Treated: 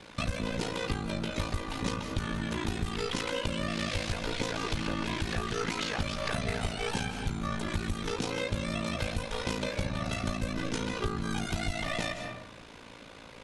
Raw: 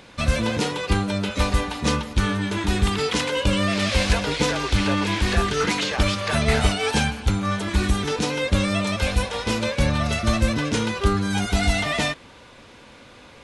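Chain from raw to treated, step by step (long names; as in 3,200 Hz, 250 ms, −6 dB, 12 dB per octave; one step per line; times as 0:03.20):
ring modulation 28 Hz
convolution reverb RT60 0.80 s, pre-delay 119 ms, DRR 11 dB
downward compressor 5 to 1, threshold −29 dBFS, peak gain reduction 13 dB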